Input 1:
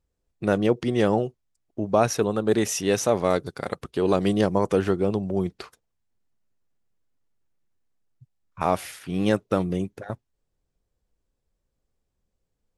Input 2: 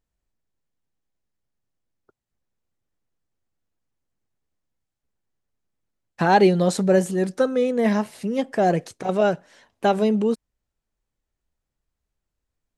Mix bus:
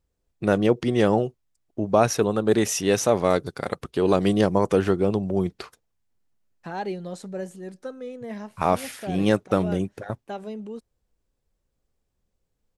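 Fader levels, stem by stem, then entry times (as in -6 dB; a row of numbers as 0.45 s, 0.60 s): +1.5 dB, -15.0 dB; 0.00 s, 0.45 s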